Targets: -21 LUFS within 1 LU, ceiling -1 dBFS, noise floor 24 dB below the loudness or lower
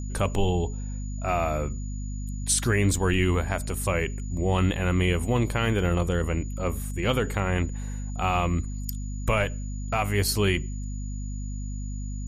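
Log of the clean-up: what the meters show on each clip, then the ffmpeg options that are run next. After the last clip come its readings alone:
hum 50 Hz; harmonics up to 250 Hz; hum level -30 dBFS; steady tone 6900 Hz; tone level -47 dBFS; loudness -27.0 LUFS; peak -10.5 dBFS; loudness target -21.0 LUFS
-> -af "bandreject=f=50:t=h:w=4,bandreject=f=100:t=h:w=4,bandreject=f=150:t=h:w=4,bandreject=f=200:t=h:w=4,bandreject=f=250:t=h:w=4"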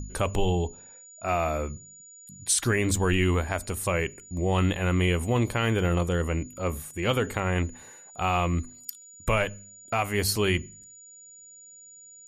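hum none; steady tone 6900 Hz; tone level -47 dBFS
-> -af "bandreject=f=6.9k:w=30"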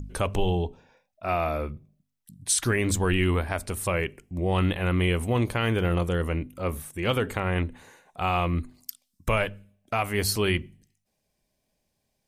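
steady tone none; loudness -27.0 LUFS; peak -11.5 dBFS; loudness target -21.0 LUFS
-> -af "volume=6dB"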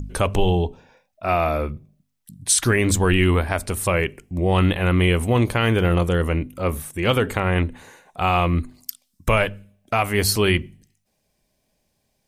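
loudness -21.0 LUFS; peak -5.5 dBFS; noise floor -72 dBFS

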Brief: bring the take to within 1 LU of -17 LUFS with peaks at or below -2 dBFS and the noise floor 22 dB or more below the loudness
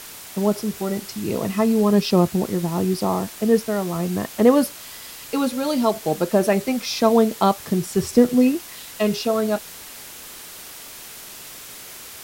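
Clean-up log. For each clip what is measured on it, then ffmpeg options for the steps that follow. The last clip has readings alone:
noise floor -39 dBFS; noise floor target -43 dBFS; loudness -21.0 LUFS; peak -3.0 dBFS; loudness target -17.0 LUFS
-> -af "afftdn=nr=6:nf=-39"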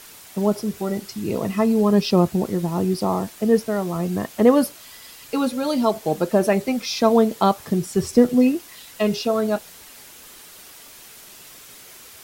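noise floor -44 dBFS; loudness -21.0 LUFS; peak -3.0 dBFS; loudness target -17.0 LUFS
-> -af "volume=4dB,alimiter=limit=-2dB:level=0:latency=1"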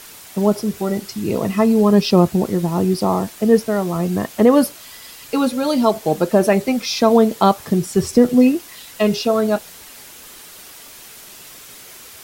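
loudness -17.5 LUFS; peak -2.0 dBFS; noise floor -40 dBFS

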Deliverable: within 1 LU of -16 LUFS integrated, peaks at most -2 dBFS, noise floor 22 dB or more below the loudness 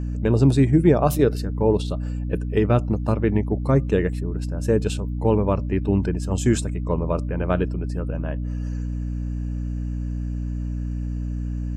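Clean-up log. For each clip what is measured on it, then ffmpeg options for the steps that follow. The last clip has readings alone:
hum 60 Hz; harmonics up to 300 Hz; hum level -24 dBFS; loudness -23.0 LUFS; peak -4.0 dBFS; loudness target -16.0 LUFS
-> -af "bandreject=f=60:t=h:w=4,bandreject=f=120:t=h:w=4,bandreject=f=180:t=h:w=4,bandreject=f=240:t=h:w=4,bandreject=f=300:t=h:w=4"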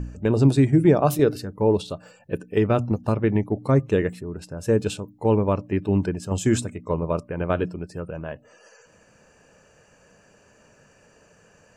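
hum none; loudness -23.0 LUFS; peak -6.5 dBFS; loudness target -16.0 LUFS
-> -af "volume=7dB,alimiter=limit=-2dB:level=0:latency=1"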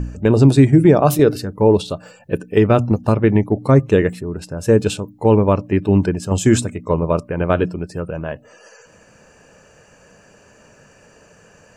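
loudness -16.5 LUFS; peak -2.0 dBFS; noise floor -50 dBFS

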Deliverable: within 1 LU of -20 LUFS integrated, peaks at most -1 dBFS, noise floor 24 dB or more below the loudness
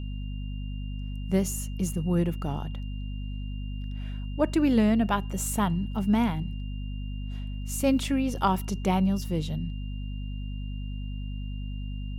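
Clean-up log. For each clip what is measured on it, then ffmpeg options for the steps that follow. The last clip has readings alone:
hum 50 Hz; harmonics up to 250 Hz; hum level -31 dBFS; steady tone 2800 Hz; tone level -51 dBFS; loudness -29.5 LUFS; peak -11.5 dBFS; loudness target -20.0 LUFS
-> -af "bandreject=f=50:t=h:w=6,bandreject=f=100:t=h:w=6,bandreject=f=150:t=h:w=6,bandreject=f=200:t=h:w=6,bandreject=f=250:t=h:w=6"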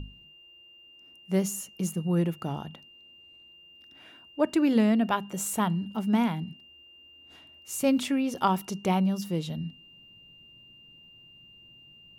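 hum none; steady tone 2800 Hz; tone level -51 dBFS
-> -af "bandreject=f=2.8k:w=30"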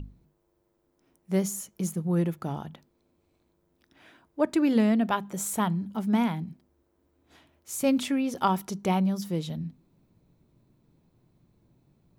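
steady tone none; loudness -28.0 LUFS; peak -11.5 dBFS; loudness target -20.0 LUFS
-> -af "volume=8dB"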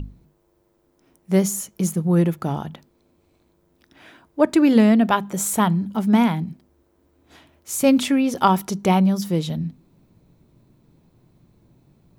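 loudness -20.0 LUFS; peak -3.5 dBFS; noise floor -64 dBFS

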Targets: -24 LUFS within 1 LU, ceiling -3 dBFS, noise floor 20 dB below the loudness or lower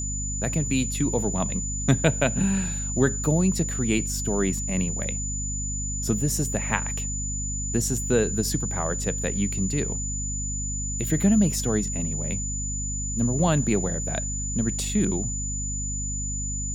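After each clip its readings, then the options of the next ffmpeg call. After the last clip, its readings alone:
hum 50 Hz; harmonics up to 250 Hz; hum level -29 dBFS; steady tone 7000 Hz; tone level -30 dBFS; loudness -25.5 LUFS; peak -4.5 dBFS; loudness target -24.0 LUFS
-> -af "bandreject=f=50:t=h:w=6,bandreject=f=100:t=h:w=6,bandreject=f=150:t=h:w=6,bandreject=f=200:t=h:w=6,bandreject=f=250:t=h:w=6"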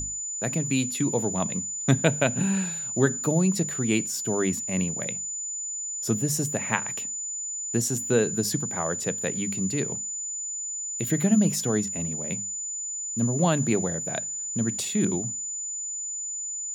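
hum none; steady tone 7000 Hz; tone level -30 dBFS
-> -af "bandreject=f=7k:w=30"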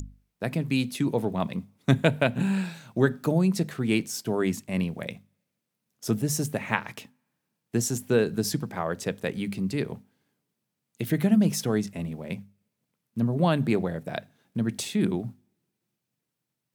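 steady tone none; loudness -27.5 LUFS; peak -5.0 dBFS; loudness target -24.0 LUFS
-> -af "volume=3.5dB,alimiter=limit=-3dB:level=0:latency=1"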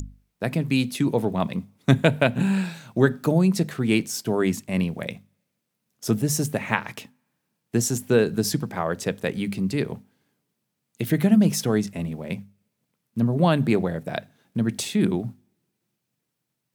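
loudness -24.0 LUFS; peak -3.0 dBFS; noise floor -79 dBFS

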